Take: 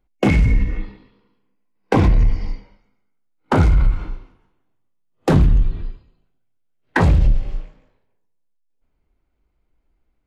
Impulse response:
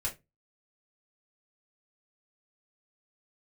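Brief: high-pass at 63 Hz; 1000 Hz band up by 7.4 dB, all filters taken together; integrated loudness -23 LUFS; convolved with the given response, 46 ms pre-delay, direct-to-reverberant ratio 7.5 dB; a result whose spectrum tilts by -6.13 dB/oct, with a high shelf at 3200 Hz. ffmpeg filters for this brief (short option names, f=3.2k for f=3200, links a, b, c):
-filter_complex "[0:a]highpass=63,equalizer=f=1k:t=o:g=8.5,highshelf=f=3.2k:g=6.5,asplit=2[a][b];[1:a]atrim=start_sample=2205,adelay=46[c];[b][c]afir=irnorm=-1:irlink=0,volume=-10.5dB[d];[a][d]amix=inputs=2:normalize=0,volume=-6dB"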